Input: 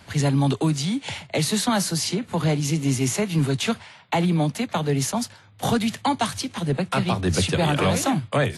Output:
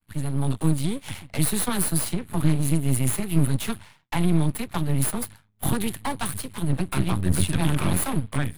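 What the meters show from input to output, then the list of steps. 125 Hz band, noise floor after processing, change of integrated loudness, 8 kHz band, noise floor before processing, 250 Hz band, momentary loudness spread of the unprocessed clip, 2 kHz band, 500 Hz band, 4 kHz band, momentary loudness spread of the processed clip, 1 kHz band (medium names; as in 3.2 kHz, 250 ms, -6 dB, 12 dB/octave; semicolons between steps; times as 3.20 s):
0.0 dB, -58 dBFS, -2.0 dB, 0.0 dB, -50 dBFS, -2.5 dB, 6 LU, -5.5 dB, -8.0 dB, -7.5 dB, 7 LU, -7.0 dB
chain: expander -39 dBFS; FFT filter 160 Hz 0 dB, 460 Hz -19 dB, 930 Hz -8 dB, 4.1 kHz -10 dB, 5.9 kHz -22 dB, 10 kHz +5 dB; level rider gain up to 8.5 dB; half-wave rectifier; trim -1.5 dB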